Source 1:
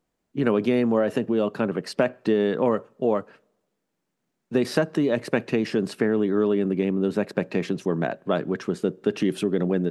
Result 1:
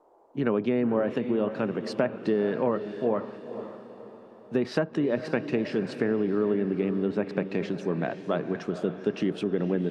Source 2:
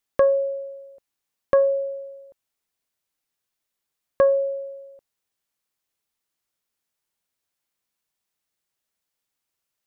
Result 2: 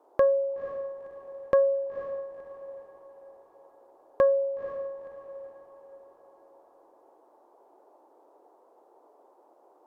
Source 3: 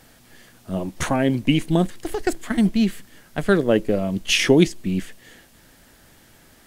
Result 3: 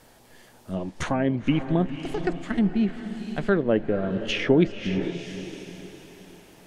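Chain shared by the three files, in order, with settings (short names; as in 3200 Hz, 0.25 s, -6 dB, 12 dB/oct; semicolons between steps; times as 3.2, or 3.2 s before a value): band noise 320–950 Hz -56 dBFS; diffused feedback echo 0.501 s, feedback 42%, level -10.5 dB; treble ducked by the level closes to 2200 Hz, closed at -16.5 dBFS; gain -4 dB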